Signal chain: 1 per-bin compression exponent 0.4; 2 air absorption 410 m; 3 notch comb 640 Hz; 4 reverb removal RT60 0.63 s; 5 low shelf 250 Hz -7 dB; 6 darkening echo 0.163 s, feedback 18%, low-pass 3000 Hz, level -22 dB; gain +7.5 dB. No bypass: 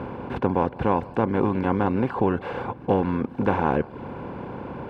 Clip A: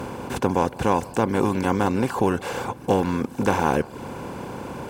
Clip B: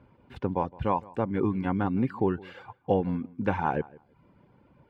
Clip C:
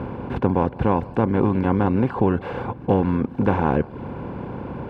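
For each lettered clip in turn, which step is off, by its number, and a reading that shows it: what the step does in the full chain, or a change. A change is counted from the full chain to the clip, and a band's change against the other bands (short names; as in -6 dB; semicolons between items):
2, 4 kHz band +8.0 dB; 1, momentary loudness spread change -3 LU; 5, 125 Hz band +4.5 dB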